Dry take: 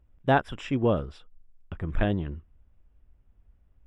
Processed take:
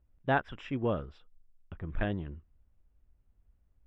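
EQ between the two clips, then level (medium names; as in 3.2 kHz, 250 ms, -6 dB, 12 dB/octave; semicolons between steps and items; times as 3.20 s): treble shelf 6.4 kHz +6 dB; dynamic bell 1.8 kHz, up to +5 dB, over -40 dBFS, Q 0.9; distance through air 150 m; -7.0 dB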